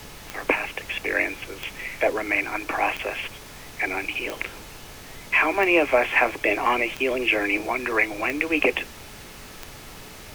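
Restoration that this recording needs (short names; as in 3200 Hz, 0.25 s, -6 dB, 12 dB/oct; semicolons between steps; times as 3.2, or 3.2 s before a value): de-click; de-hum 429.6 Hz, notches 15; noise print and reduce 27 dB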